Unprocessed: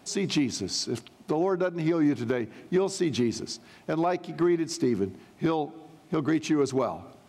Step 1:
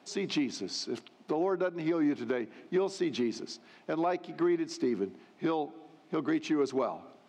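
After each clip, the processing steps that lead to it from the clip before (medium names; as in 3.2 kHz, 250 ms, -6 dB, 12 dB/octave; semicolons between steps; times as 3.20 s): three-band isolator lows -21 dB, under 180 Hz, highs -15 dB, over 5.8 kHz; trim -3.5 dB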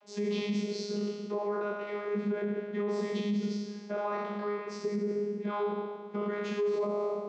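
spectral sustain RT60 1.55 s; vocoder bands 32, saw 206 Hz; peak limiter -24 dBFS, peak gain reduction 10.5 dB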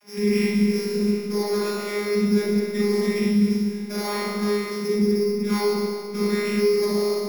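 sorted samples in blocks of 8 samples; in parallel at -6 dB: saturation -37 dBFS, distortion -8 dB; on the sum: reverberation RT60 0.60 s, pre-delay 36 ms, DRR -1 dB; trim +3 dB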